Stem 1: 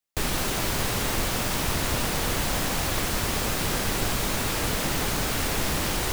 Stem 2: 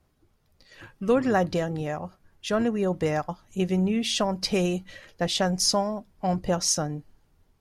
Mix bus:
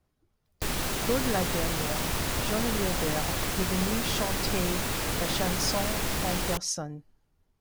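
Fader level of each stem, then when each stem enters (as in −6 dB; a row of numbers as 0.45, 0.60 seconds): −3.5, −7.0 decibels; 0.45, 0.00 seconds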